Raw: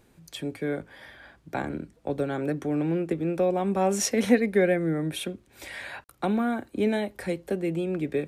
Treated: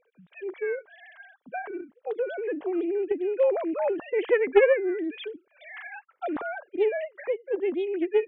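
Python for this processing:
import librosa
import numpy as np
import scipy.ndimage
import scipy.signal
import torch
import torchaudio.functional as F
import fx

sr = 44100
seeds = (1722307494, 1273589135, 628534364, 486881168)

y = fx.sine_speech(x, sr)
y = fx.doppler_dist(y, sr, depth_ms=0.19)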